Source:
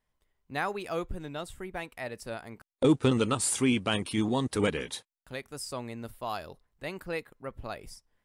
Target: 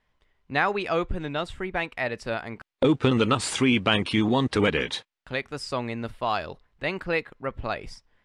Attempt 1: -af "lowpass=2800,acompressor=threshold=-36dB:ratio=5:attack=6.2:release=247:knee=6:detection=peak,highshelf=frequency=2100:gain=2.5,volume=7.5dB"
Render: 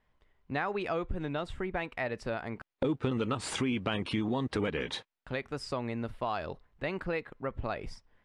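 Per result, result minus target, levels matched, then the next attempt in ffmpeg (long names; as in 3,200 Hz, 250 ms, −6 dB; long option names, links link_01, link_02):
downward compressor: peak gain reduction +9.5 dB; 4,000 Hz band −2.5 dB
-af "lowpass=2800,acompressor=threshold=-24dB:ratio=5:attack=6.2:release=247:knee=6:detection=peak,highshelf=frequency=2100:gain=2.5,volume=7.5dB"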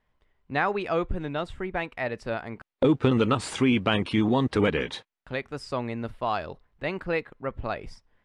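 4,000 Hz band −4.0 dB
-af "lowpass=2800,acompressor=threshold=-24dB:ratio=5:attack=6.2:release=247:knee=6:detection=peak,highshelf=frequency=2100:gain=10,volume=7.5dB"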